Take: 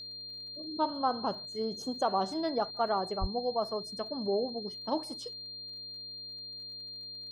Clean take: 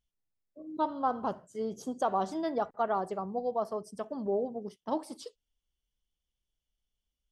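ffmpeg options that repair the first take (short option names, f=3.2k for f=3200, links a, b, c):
-filter_complex "[0:a]adeclick=t=4,bandreject=f=117.9:t=h:w=4,bandreject=f=235.8:t=h:w=4,bandreject=f=353.7:t=h:w=4,bandreject=f=471.6:t=h:w=4,bandreject=f=589.5:t=h:w=4,bandreject=f=4.2k:w=30,asplit=3[a][b][c];[a]afade=t=out:st=3.2:d=0.02[d];[b]highpass=f=140:w=0.5412,highpass=f=140:w=1.3066,afade=t=in:st=3.2:d=0.02,afade=t=out:st=3.32:d=0.02[e];[c]afade=t=in:st=3.32:d=0.02[f];[d][e][f]amix=inputs=3:normalize=0"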